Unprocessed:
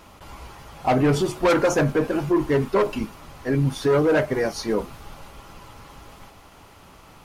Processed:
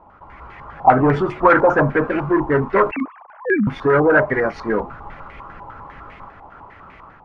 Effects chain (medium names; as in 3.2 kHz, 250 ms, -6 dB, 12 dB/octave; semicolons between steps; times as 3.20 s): 2.91–3.67 s: formants replaced by sine waves; level rider gain up to 7 dB; step-sequenced low-pass 10 Hz 880–2100 Hz; trim -4.5 dB